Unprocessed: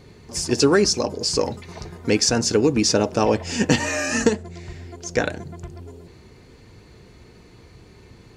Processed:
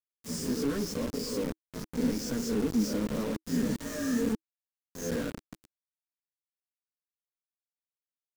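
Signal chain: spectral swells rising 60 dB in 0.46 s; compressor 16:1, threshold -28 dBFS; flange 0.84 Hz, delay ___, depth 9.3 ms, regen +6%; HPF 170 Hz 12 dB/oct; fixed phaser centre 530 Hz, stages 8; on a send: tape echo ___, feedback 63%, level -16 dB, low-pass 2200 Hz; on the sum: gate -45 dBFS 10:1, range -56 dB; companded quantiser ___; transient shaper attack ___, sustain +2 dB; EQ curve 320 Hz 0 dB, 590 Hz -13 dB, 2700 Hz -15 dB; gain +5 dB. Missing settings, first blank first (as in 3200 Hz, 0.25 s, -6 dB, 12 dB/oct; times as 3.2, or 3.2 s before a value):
6.8 ms, 0.132 s, 2-bit, -2 dB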